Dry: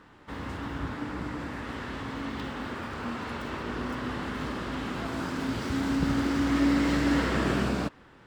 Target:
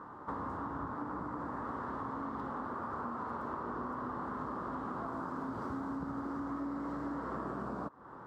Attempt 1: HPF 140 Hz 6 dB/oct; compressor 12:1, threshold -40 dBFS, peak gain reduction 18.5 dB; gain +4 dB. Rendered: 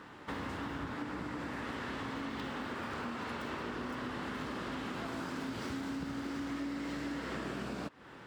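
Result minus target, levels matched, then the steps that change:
4000 Hz band +20.0 dB
add after HPF: resonant high shelf 1700 Hz -14 dB, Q 3

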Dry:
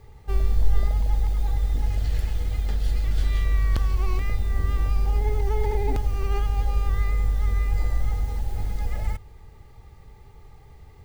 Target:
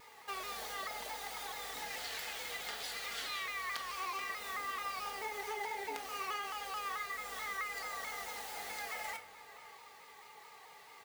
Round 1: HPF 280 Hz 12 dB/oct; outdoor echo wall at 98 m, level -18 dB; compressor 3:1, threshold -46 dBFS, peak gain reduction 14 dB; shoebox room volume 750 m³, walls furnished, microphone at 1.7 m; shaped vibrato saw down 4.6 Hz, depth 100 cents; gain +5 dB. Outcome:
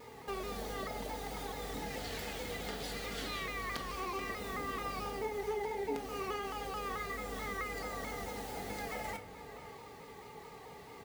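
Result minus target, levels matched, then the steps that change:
250 Hz band +15.0 dB
change: HPF 970 Hz 12 dB/oct

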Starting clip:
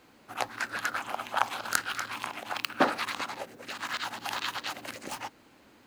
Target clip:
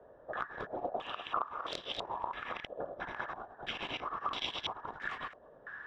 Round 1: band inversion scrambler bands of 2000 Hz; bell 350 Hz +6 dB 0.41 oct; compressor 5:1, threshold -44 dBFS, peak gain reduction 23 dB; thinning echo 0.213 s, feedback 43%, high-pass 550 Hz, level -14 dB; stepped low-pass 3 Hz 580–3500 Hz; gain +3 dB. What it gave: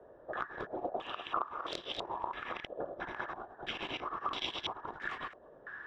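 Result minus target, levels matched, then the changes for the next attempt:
250 Hz band +2.5 dB
remove: bell 350 Hz +6 dB 0.41 oct

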